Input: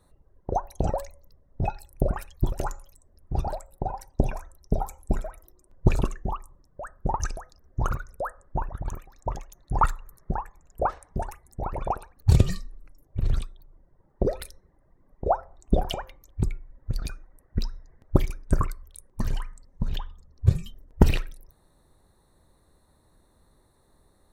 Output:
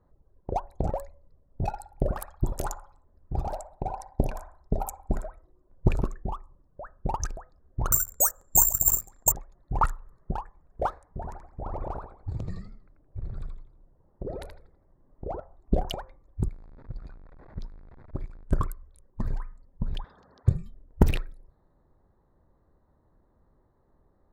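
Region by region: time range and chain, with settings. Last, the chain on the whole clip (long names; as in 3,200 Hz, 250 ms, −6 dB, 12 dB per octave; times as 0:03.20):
0:01.65–0:05.26: high-shelf EQ 2,200 Hz +7.5 dB + feedback echo with a band-pass in the loop 60 ms, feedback 45%, band-pass 970 Hz, level −6.5 dB
0:07.92–0:09.32: mains-hum notches 50/100/150/200 Hz + bad sample-rate conversion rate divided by 6×, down none, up zero stuff
0:11.07–0:15.40: downward compressor, threshold −27 dBFS + feedback echo with a swinging delay time 82 ms, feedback 35%, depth 178 cents, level −3.5 dB
0:16.48–0:18.44: converter with a step at zero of −29.5 dBFS + noise gate −24 dBFS, range −11 dB + downward compressor 2.5 to 1, threshold −30 dBFS
0:20.04–0:20.48: loudspeaker in its box 240–5,800 Hz, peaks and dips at 330 Hz −9 dB, 1,600 Hz +9 dB, 2,300 Hz −8 dB, 4,700 Hz +7 dB + every bin compressed towards the loudest bin 4 to 1
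whole clip: adaptive Wiener filter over 15 samples; low-pass that shuts in the quiet parts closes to 2,300 Hz, open at −23 dBFS; high-shelf EQ 8,600 Hz +9 dB; level −2.5 dB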